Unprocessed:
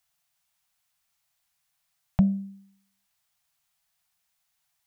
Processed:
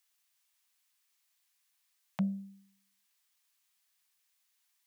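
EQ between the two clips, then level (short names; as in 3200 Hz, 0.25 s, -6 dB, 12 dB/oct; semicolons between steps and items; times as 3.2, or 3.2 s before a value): HPF 250 Hz 24 dB/oct; bell 680 Hz -10.5 dB 0.92 oct; notch 1400 Hz, Q 12; 0.0 dB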